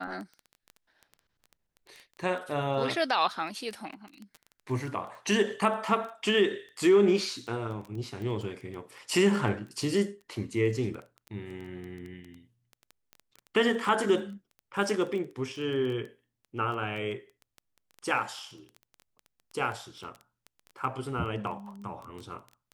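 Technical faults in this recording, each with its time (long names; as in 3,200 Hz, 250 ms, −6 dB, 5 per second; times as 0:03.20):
surface crackle 11 per second −35 dBFS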